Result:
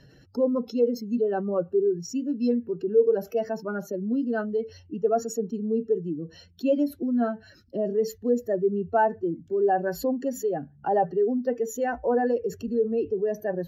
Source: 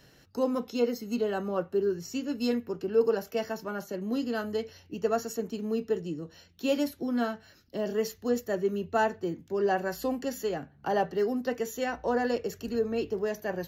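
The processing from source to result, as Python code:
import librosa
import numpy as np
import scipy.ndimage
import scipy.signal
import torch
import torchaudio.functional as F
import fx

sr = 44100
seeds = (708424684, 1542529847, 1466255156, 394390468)

y = fx.spec_expand(x, sr, power=1.8)
y = y * 10.0 ** (4.5 / 20.0)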